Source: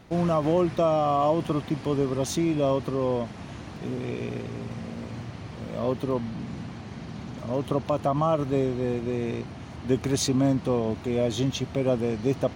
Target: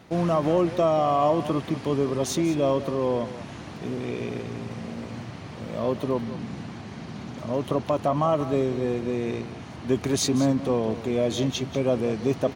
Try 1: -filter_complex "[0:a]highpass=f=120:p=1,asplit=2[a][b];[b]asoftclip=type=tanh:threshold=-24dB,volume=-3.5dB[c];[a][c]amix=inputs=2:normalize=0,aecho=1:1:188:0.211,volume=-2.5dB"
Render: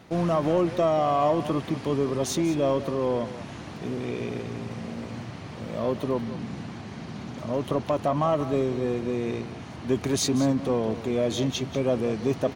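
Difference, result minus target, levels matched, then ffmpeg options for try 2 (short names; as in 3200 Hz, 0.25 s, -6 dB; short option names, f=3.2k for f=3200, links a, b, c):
soft clip: distortion +9 dB
-filter_complex "[0:a]highpass=f=120:p=1,asplit=2[a][b];[b]asoftclip=type=tanh:threshold=-16.5dB,volume=-3.5dB[c];[a][c]amix=inputs=2:normalize=0,aecho=1:1:188:0.211,volume=-2.5dB"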